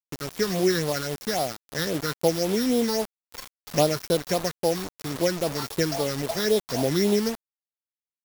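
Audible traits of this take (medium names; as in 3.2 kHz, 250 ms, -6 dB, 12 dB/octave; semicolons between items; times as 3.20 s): a buzz of ramps at a fixed pitch in blocks of 8 samples; phasing stages 6, 3.7 Hz, lowest notch 640–1900 Hz; a quantiser's noise floor 6-bit, dither none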